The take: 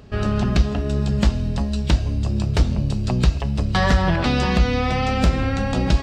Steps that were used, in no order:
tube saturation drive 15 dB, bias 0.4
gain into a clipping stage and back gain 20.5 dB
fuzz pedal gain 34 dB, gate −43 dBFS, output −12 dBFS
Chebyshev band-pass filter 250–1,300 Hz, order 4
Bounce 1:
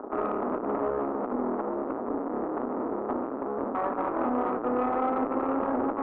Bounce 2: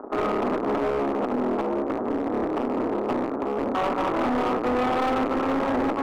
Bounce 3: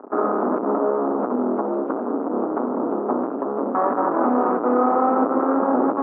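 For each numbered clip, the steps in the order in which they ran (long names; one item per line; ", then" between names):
fuzz pedal, then gain into a clipping stage and back, then Chebyshev band-pass filter, then tube saturation
fuzz pedal, then Chebyshev band-pass filter, then tube saturation, then gain into a clipping stage and back
gain into a clipping stage and back, then tube saturation, then fuzz pedal, then Chebyshev band-pass filter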